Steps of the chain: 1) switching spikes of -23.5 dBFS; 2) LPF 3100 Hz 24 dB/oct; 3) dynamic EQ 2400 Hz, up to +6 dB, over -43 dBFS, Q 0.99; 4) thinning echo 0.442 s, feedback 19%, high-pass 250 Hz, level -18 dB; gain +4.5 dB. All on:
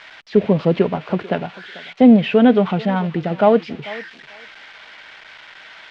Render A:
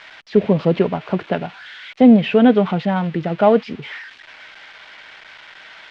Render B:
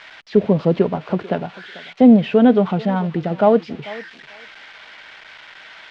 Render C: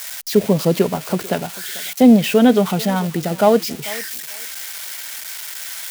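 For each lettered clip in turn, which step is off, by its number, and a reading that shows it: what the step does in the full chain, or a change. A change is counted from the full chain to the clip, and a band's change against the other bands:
4, momentary loudness spread change +1 LU; 3, 4 kHz band -3.0 dB; 2, 4 kHz band +6.5 dB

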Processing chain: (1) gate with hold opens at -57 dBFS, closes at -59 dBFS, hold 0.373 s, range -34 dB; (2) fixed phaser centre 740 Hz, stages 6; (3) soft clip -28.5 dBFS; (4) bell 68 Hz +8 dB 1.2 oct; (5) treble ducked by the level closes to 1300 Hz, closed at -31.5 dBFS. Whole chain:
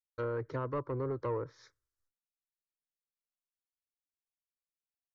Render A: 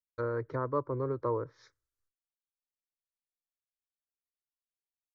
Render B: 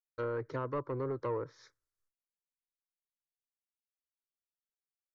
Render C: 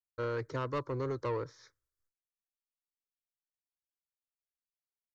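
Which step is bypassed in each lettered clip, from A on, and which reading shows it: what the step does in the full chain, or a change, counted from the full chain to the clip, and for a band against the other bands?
3, distortion -12 dB; 4, 125 Hz band -2.5 dB; 5, 4 kHz band +9.5 dB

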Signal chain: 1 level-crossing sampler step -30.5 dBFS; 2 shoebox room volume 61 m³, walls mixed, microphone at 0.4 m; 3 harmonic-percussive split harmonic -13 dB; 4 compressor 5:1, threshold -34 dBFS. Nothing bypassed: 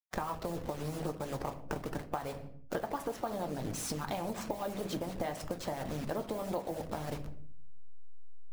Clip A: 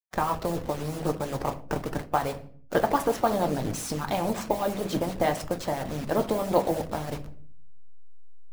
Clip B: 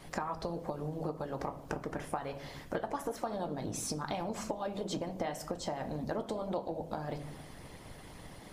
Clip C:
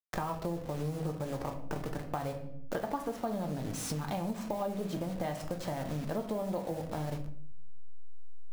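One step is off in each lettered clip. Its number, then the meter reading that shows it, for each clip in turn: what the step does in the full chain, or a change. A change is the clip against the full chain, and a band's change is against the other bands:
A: 4, mean gain reduction 6.5 dB; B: 1, distortion -14 dB; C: 3, 125 Hz band +4.5 dB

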